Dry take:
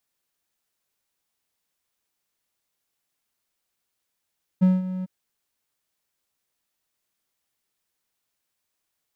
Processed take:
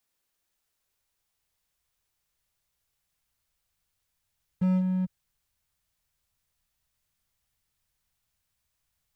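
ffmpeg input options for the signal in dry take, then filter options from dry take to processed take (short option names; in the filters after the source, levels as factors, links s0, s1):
-f lavfi -i "aevalsrc='0.299*(1-4*abs(mod(185*t+0.25,1)-0.5))':d=0.453:s=44100,afade=t=in:d=0.02,afade=t=out:st=0.02:d=0.187:silence=0.2,afade=t=out:st=0.43:d=0.023"
-filter_complex "[0:a]asubboost=boost=10:cutoff=100,alimiter=limit=0.168:level=0:latency=1,acrossover=split=230|400[s0][s1][s2];[s0]volume=25.1,asoftclip=hard,volume=0.0398[s3];[s3][s1][s2]amix=inputs=3:normalize=0"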